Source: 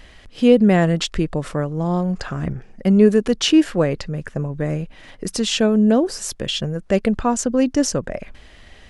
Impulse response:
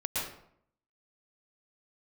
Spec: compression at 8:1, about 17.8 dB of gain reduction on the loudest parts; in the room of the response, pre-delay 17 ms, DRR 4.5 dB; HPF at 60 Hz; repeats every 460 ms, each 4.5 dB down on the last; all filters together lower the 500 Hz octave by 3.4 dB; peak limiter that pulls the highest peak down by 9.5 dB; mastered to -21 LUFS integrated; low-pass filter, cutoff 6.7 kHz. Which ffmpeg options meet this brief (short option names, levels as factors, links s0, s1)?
-filter_complex "[0:a]highpass=60,lowpass=6700,equalizer=f=500:t=o:g=-4,acompressor=threshold=0.0355:ratio=8,alimiter=level_in=1.26:limit=0.0631:level=0:latency=1,volume=0.794,aecho=1:1:460|920|1380|1840|2300|2760|3220|3680|4140:0.596|0.357|0.214|0.129|0.0772|0.0463|0.0278|0.0167|0.01,asplit=2[s0][s1];[1:a]atrim=start_sample=2205,adelay=17[s2];[s1][s2]afir=irnorm=-1:irlink=0,volume=0.299[s3];[s0][s3]amix=inputs=2:normalize=0,volume=3.98"